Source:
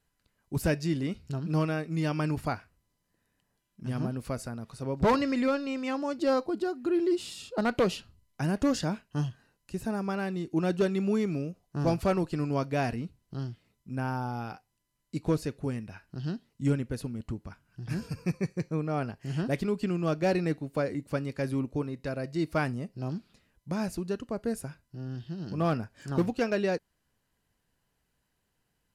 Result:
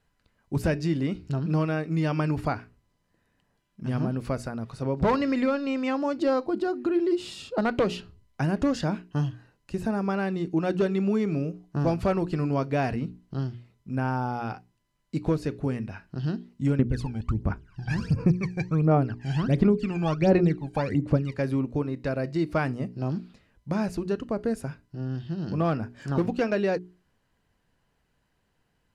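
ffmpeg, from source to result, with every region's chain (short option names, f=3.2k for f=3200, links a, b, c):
-filter_complex "[0:a]asettb=1/sr,asplit=3[a][b][c];[a]atrim=end=16.794[d];[b]atrim=start=16.79:end=21.34,asetpts=PTS-STARTPTS,afade=t=in:d=0.004:c=qsin,afade=t=out:st=4.546:d=0.004:c=qsin,lowpass=9.2k,aphaser=in_gain=1:out_gain=1:delay=1.3:decay=0.8:speed=1.4:type=sinusoidal[e];[c]atrim=start=21.336[f];[d][e]acrossfade=d=0.004:c1=hsin:c2=qsin[g];[g][f]acrossfade=d=0.004:c1=qsin:c2=hsin,aemphasis=mode=reproduction:type=50kf,bandreject=f=60:t=h:w=6,bandreject=f=120:t=h:w=6,bandreject=f=180:t=h:w=6,bandreject=f=240:t=h:w=6,bandreject=f=300:t=h:w=6,bandreject=f=360:t=h:w=6,bandreject=f=420:t=h:w=6,acompressor=threshold=-30dB:ratio=2,volume=6.5dB"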